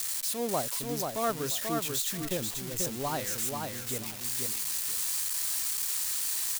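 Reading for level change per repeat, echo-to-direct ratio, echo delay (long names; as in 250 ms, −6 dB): −14.5 dB, −4.0 dB, 487 ms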